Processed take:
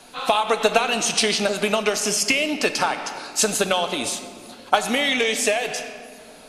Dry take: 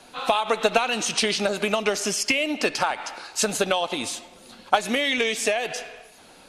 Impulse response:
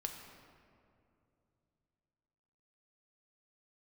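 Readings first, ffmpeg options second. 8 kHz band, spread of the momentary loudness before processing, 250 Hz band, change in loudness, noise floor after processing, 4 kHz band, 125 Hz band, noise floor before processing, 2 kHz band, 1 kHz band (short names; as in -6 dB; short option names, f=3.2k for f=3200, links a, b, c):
+4.5 dB, 9 LU, +2.0 dB, +2.5 dB, -45 dBFS, +3.0 dB, +2.5 dB, -50 dBFS, +2.5 dB, +2.0 dB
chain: -filter_complex "[0:a]asplit=2[a][b];[1:a]atrim=start_sample=2205,highshelf=f=5.4k:g=9[c];[b][c]afir=irnorm=-1:irlink=0,volume=0.5dB[d];[a][d]amix=inputs=2:normalize=0,volume=-3.5dB"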